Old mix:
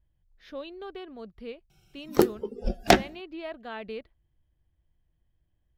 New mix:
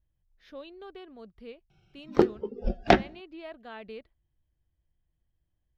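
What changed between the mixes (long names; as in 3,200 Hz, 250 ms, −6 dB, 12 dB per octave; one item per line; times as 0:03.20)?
speech −5.0 dB
background: add high-frequency loss of the air 200 metres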